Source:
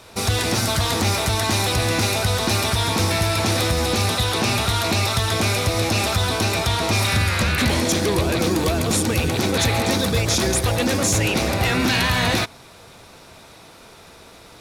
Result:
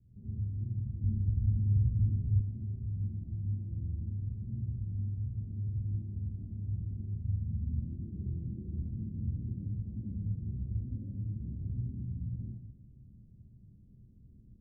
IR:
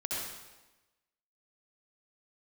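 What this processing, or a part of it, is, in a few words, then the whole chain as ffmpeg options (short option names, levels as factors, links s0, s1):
club heard from the street: -filter_complex "[0:a]alimiter=limit=0.0841:level=0:latency=1,lowpass=f=180:w=0.5412,lowpass=f=180:w=1.3066[s0];[1:a]atrim=start_sample=2205[s1];[s0][s1]afir=irnorm=-1:irlink=0,asettb=1/sr,asplit=3[s2][s3][s4];[s2]atrim=end=1.044[s5];[s3]atrim=start=1.04:end=2.41,asetpts=PTS-STARTPTS,afade=t=in:d=0.004:c=qsin,afade=t=out:st=1.366:d=0.004:c=qsin,lowshelf=f=180:g=11[s6];[s4]atrim=start=2.406[s7];[s5][s6]acrossfade=d=0.004:c1=hsin:c2=qsin[s8];[s8][s7]acrossfade=d=0.004:c1=qsin:c2=hsin,volume=0.501"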